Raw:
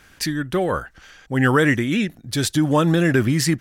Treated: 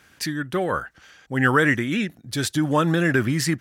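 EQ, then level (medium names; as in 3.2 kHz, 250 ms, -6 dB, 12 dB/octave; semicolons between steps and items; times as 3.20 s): high-pass 78 Hz; dynamic bell 1.5 kHz, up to +5 dB, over -33 dBFS, Q 1.2; -3.5 dB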